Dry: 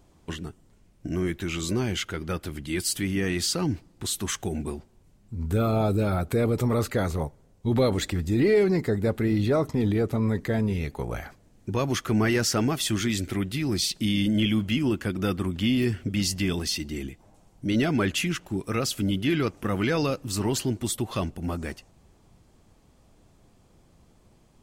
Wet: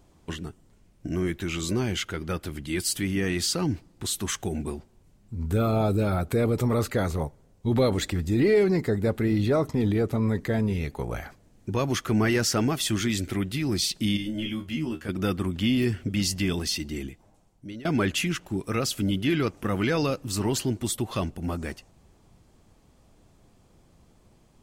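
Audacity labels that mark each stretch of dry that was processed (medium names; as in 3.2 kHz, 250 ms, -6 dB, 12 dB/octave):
14.170000	15.090000	feedback comb 78 Hz, decay 0.17 s, mix 100%
16.970000	17.850000	fade out, to -22.5 dB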